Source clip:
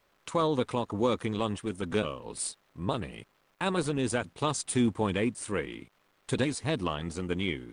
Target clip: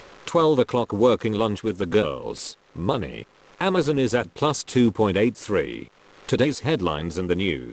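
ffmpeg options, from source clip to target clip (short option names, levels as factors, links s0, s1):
-filter_complex "[0:a]bandreject=f=640:w=13,asplit=2[s0][s1];[s1]acompressor=mode=upward:threshold=0.0316:ratio=2.5,volume=1[s2];[s0][s2]amix=inputs=2:normalize=0,equalizer=f=460:t=o:w=0.89:g=5" -ar 16000 -c:a pcm_mulaw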